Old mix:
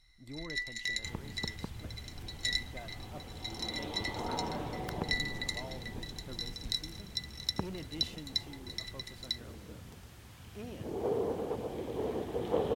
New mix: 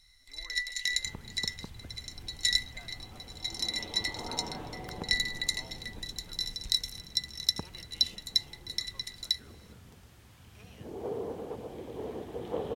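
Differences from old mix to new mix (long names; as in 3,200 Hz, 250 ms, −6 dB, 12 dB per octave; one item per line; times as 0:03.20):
speech: add high-pass filter 1,100 Hz 12 dB per octave
first sound: add high-shelf EQ 3,300 Hz +10.5 dB
second sound −3.5 dB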